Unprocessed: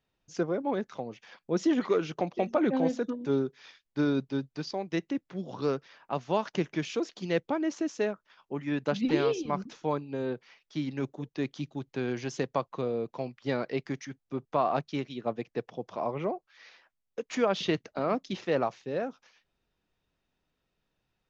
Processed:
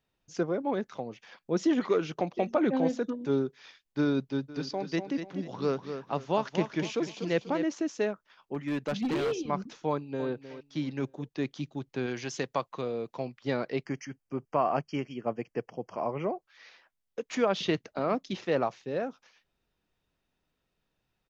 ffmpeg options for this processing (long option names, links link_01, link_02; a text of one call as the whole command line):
ffmpeg -i in.wav -filter_complex "[0:a]asplit=3[link_01][link_02][link_03];[link_01]afade=type=out:start_time=4.48:duration=0.02[link_04];[link_02]aecho=1:1:244|488|732|976:0.376|0.128|0.0434|0.0148,afade=type=in:start_time=4.48:duration=0.02,afade=type=out:start_time=7.64:duration=0.02[link_05];[link_03]afade=type=in:start_time=7.64:duration=0.02[link_06];[link_04][link_05][link_06]amix=inputs=3:normalize=0,asettb=1/sr,asplit=3[link_07][link_08][link_09];[link_07]atrim=end=8.544[link_10];[link_08]atrim=start=8.54:end=9.32,asetpts=PTS-STARTPTS,afade=type=in:duration=0.004:curve=qsin,afade=type=out:start_time=0.776:duration=0.004:curve=qsin,asoftclip=type=hard:threshold=-26dB[link_11];[link_09]atrim=start=9.316[link_12];[link_10][link_11]acrossfade=duration=0.004:curve1=hsin:curve2=qsin[link_13];[link_13][link_12]acrossfade=duration=0.004:curve1=qsin:curve2=hsin,asplit=2[link_14][link_15];[link_15]afade=type=in:start_time=9.88:duration=0.01,afade=type=out:start_time=10.29:duration=0.01,aecho=0:1:310|620|930:0.237137|0.0711412|0.0213424[link_16];[link_14][link_16]amix=inputs=2:normalize=0,asettb=1/sr,asplit=3[link_17][link_18][link_19];[link_17]atrim=end=12.064[link_20];[link_18]atrim=start=12.06:end=13.17,asetpts=PTS-STARTPTS,afade=type=in:duration=0.004:curve=qsin,afade=type=out:start_time=1.106:duration=0.004:curve=qsin,tiltshelf=frequency=970:gain=-3.5[link_21];[link_19]atrim=start=13.166[link_22];[link_20][link_21]acrossfade=duration=0.004:curve1=hsin:curve2=qsin[link_23];[link_23][link_22]acrossfade=duration=0.004:curve1=qsin:curve2=hsin,asplit=3[link_24][link_25][link_26];[link_24]afade=type=out:start_time=13.84:duration=0.02[link_27];[link_25]asuperstop=centerf=3800:order=20:qfactor=3.2,afade=type=in:start_time=13.84:duration=0.02,afade=type=out:start_time=16.34:duration=0.02[link_28];[link_26]afade=type=in:start_time=16.34:duration=0.02[link_29];[link_27][link_28][link_29]amix=inputs=3:normalize=0" out.wav